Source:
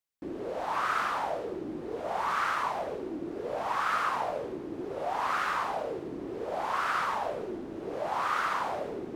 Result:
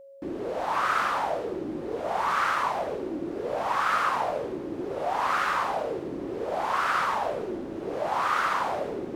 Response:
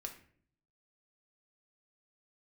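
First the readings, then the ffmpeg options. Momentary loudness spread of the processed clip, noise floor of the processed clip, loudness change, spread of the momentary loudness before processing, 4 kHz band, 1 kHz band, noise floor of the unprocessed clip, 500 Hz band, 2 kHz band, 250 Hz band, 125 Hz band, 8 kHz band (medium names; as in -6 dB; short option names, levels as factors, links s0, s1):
9 LU, -36 dBFS, +4.0 dB, 9 LU, +4.0 dB, +4.0 dB, -40 dBFS, +4.0 dB, +4.0 dB, +4.0 dB, +4.0 dB, +4.0 dB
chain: -af "aeval=exprs='val(0)+0.00316*sin(2*PI*550*n/s)':c=same,volume=1.58"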